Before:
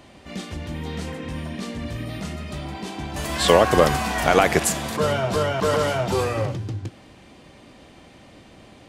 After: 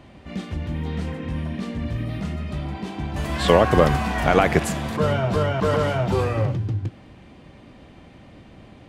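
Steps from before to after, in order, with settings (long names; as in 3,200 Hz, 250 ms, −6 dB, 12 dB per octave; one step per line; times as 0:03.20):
bass and treble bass +6 dB, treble −9 dB
level −1 dB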